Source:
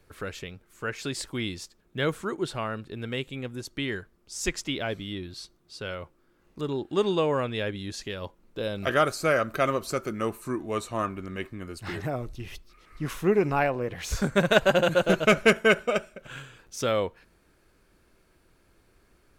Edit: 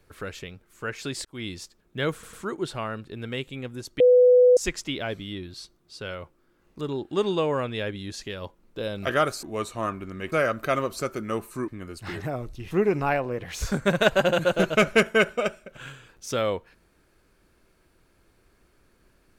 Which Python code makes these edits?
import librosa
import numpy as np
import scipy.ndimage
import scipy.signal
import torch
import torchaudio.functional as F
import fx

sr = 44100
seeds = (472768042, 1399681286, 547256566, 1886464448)

y = fx.edit(x, sr, fx.fade_in_span(start_s=1.25, length_s=0.37, curve='qsin'),
    fx.stutter(start_s=2.13, slice_s=0.1, count=3),
    fx.bleep(start_s=3.8, length_s=0.57, hz=497.0, db=-12.0),
    fx.move(start_s=10.59, length_s=0.89, to_s=9.23),
    fx.cut(start_s=12.51, length_s=0.7), tone=tone)